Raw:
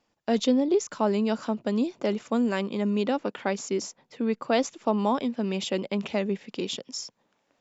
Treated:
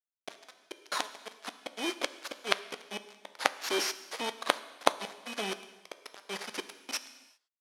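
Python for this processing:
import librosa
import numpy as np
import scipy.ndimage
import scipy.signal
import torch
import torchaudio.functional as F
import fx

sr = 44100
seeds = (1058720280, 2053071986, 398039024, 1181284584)

p1 = fx.bit_reversed(x, sr, seeds[0], block=16)
p2 = fx.high_shelf(p1, sr, hz=3400.0, db=7.5)
p3 = fx.gate_flip(p2, sr, shuts_db=-15.0, range_db=-30)
p4 = 10.0 ** (-24.5 / 20.0) * np.tanh(p3 / 10.0 ** (-24.5 / 20.0))
p5 = p3 + (p4 * librosa.db_to_amplitude(-7.5))
p6 = fx.quant_companded(p5, sr, bits=2)
p7 = fx.bandpass_edges(p6, sr, low_hz=630.0, high_hz=4400.0)
p8 = fx.rev_gated(p7, sr, seeds[1], gate_ms=420, shape='falling', drr_db=7.5)
p9 = fx.upward_expand(p8, sr, threshold_db=-44.0, expansion=1.5)
y = p9 * librosa.db_to_amplitude(7.5)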